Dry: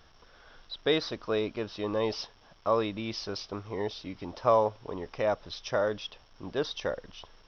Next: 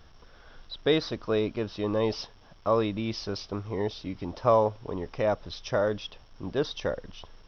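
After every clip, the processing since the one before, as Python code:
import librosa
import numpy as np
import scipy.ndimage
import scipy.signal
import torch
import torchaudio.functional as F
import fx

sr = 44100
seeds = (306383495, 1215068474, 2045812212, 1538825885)

y = fx.low_shelf(x, sr, hz=320.0, db=7.5)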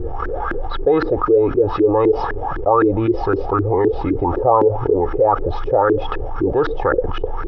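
y = x + 0.76 * np.pad(x, (int(2.4 * sr / 1000.0), 0))[:len(x)]
y = fx.filter_lfo_lowpass(y, sr, shape='saw_up', hz=3.9, low_hz=310.0, high_hz=1600.0, q=7.1)
y = fx.env_flatten(y, sr, amount_pct=70)
y = y * 10.0 ** (-4.0 / 20.0)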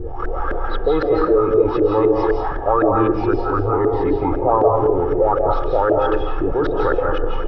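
y = fx.rev_freeverb(x, sr, rt60_s=0.76, hf_ratio=0.6, predelay_ms=120, drr_db=0.5)
y = y * 10.0 ** (-3.0 / 20.0)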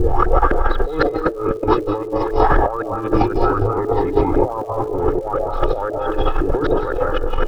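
y = fx.over_compress(x, sr, threshold_db=-22.0, ratio=-0.5)
y = fx.dmg_crackle(y, sr, seeds[0], per_s=250.0, level_db=-43.0)
y = y * 10.0 ** (6.0 / 20.0)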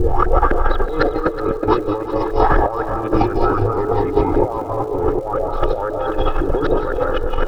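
y = fx.echo_feedback(x, sr, ms=372, feedback_pct=52, wet_db=-13.0)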